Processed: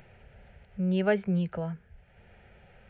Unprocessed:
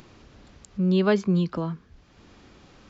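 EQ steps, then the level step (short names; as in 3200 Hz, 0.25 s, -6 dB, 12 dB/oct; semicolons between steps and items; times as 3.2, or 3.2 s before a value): brick-wall FIR low-pass 4400 Hz; fixed phaser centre 1100 Hz, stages 6; 0.0 dB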